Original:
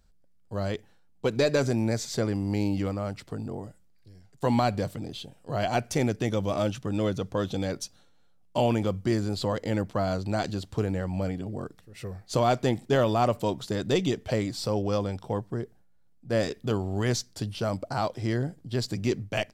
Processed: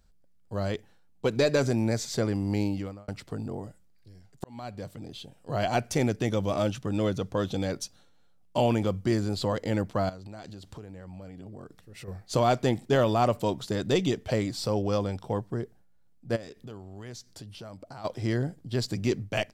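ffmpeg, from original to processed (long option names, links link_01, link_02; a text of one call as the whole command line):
ffmpeg -i in.wav -filter_complex "[0:a]asettb=1/sr,asplit=3[link_01][link_02][link_03];[link_01]atrim=end=10.094[link_04];[link_02]atrim=start=10.09:end=12.08,asetpts=PTS-STARTPTS,afade=type=in:duration=0.004:curve=qsin,afade=type=out:start_time=1.986:duration=0.004:curve=qsin,acompressor=threshold=-40dB:ratio=6:attack=3.2:release=140:knee=1:detection=peak[link_05];[link_03]atrim=start=12.076[link_06];[link_04][link_05]acrossfade=duration=0.004:curve1=hsin:curve2=qsin[link_07];[link_07][link_06]acrossfade=duration=0.004:curve1=qsin:curve2=hsin,asplit=3[link_08][link_09][link_10];[link_08]afade=type=out:start_time=16.35:duration=0.02[link_11];[link_09]acompressor=threshold=-44dB:ratio=3:attack=3.2:release=140:knee=1:detection=peak,afade=type=in:start_time=16.35:duration=0.02,afade=type=out:start_time=18.04:duration=0.02[link_12];[link_10]afade=type=in:start_time=18.04:duration=0.02[link_13];[link_11][link_12][link_13]amix=inputs=3:normalize=0,asplit=3[link_14][link_15][link_16];[link_14]atrim=end=3.08,asetpts=PTS-STARTPTS,afade=type=out:start_time=2.6:duration=0.48[link_17];[link_15]atrim=start=3.08:end=4.44,asetpts=PTS-STARTPTS,afade=type=in:duration=0.004:curve=hsin,afade=type=out:start_time=1.356:duration=0.004:curve=hsin[link_18];[link_16]atrim=start=4.44,asetpts=PTS-STARTPTS,afade=type=in:duration=1.1[link_19];[link_17][link_18][link_19]concat=n=3:v=0:a=1" out.wav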